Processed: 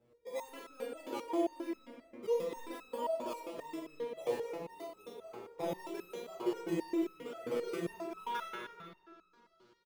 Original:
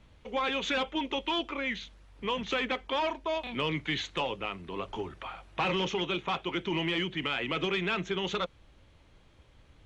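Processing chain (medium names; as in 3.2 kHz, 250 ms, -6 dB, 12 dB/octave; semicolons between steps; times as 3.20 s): band-pass sweep 450 Hz -> 4.8 kHz, 7.94–8.68 s; in parallel at -6.5 dB: decimation with a swept rate 21×, swing 100% 0.92 Hz; on the sum: reverse bouncing-ball echo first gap 40 ms, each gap 1.4×, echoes 5; on a send at -5 dB: reverberation RT60 2.9 s, pre-delay 6 ms; on the sum: resonator arpeggio 7.5 Hz 120–1300 Hz; trim +9.5 dB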